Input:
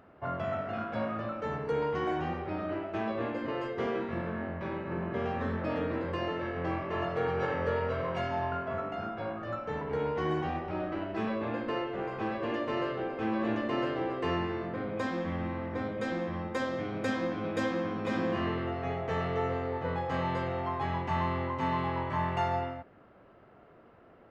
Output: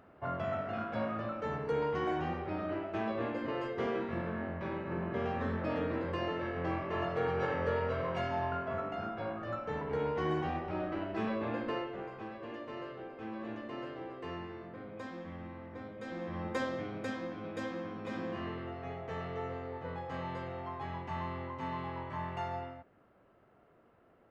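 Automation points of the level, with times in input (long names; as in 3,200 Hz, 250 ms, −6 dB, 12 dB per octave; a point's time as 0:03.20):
0:11.67 −2 dB
0:12.29 −11 dB
0:16.00 −11 dB
0:16.49 −1 dB
0:17.21 −8 dB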